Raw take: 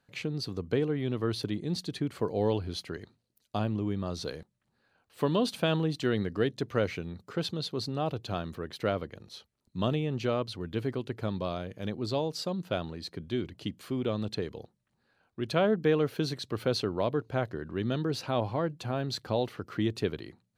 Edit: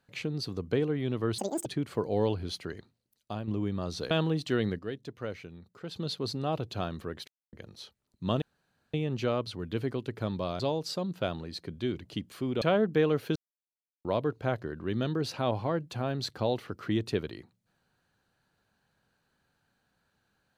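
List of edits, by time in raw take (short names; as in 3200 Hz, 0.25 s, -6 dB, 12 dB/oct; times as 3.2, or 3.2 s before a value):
1.38–1.9 speed 188%
3.01–3.72 fade out, to -8 dB
4.35–5.64 cut
6.32–7.49 gain -9 dB
8.81–9.06 mute
9.95 insert room tone 0.52 s
11.61–12.09 cut
14.11–15.51 cut
16.25–16.94 mute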